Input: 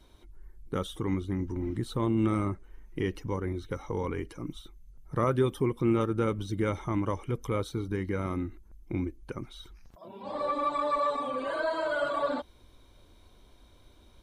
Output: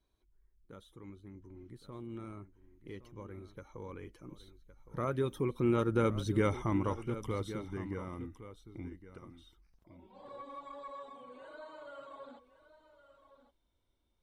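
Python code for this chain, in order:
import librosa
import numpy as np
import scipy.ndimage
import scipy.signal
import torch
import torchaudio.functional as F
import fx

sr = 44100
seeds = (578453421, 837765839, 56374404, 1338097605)

y = fx.doppler_pass(x, sr, speed_mps=13, closest_m=7.1, pass_at_s=6.29)
y = y + 10.0 ** (-13.5 / 20.0) * np.pad(y, (int(1114 * sr / 1000.0), 0))[:len(y)]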